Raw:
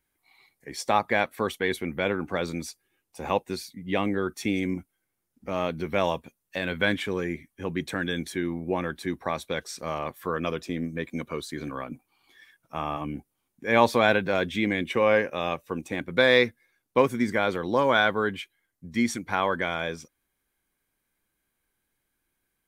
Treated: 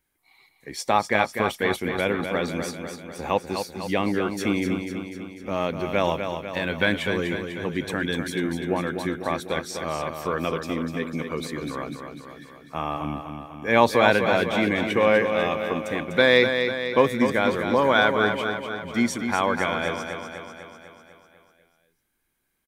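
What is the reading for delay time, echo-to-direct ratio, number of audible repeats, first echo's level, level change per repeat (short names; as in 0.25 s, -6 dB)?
0.248 s, -5.0 dB, 7, -7.0 dB, -4.5 dB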